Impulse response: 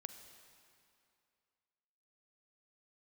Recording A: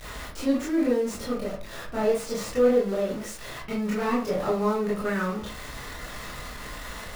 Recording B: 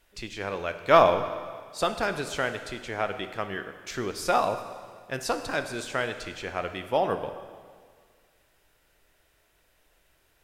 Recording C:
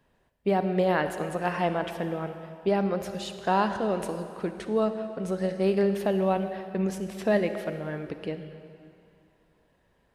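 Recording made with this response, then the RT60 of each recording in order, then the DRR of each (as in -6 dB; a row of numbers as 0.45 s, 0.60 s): C; 0.40 s, 1.8 s, 2.5 s; -7.5 dB, 8.5 dB, 8.5 dB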